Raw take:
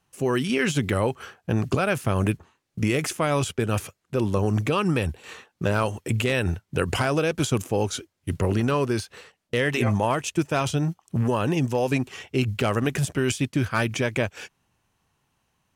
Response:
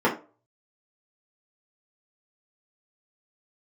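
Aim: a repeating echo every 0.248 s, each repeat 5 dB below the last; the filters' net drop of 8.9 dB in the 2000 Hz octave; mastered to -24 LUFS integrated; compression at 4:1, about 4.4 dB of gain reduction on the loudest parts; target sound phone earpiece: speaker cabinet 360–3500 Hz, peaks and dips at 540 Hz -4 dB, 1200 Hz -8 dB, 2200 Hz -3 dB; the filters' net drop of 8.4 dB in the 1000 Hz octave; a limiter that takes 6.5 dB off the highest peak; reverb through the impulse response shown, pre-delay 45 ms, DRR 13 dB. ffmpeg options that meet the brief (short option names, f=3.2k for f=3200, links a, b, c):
-filter_complex "[0:a]equalizer=f=1k:t=o:g=-5.5,equalizer=f=2k:t=o:g=-7.5,acompressor=threshold=-24dB:ratio=4,alimiter=limit=-19.5dB:level=0:latency=1,aecho=1:1:248|496|744|992|1240|1488|1736:0.562|0.315|0.176|0.0988|0.0553|0.031|0.0173,asplit=2[a][b];[1:a]atrim=start_sample=2205,adelay=45[c];[b][c]afir=irnorm=-1:irlink=0,volume=-30dB[d];[a][d]amix=inputs=2:normalize=0,highpass=360,equalizer=f=540:t=q:w=4:g=-4,equalizer=f=1.2k:t=q:w=4:g=-8,equalizer=f=2.2k:t=q:w=4:g=-3,lowpass=f=3.5k:w=0.5412,lowpass=f=3.5k:w=1.3066,volume=11.5dB"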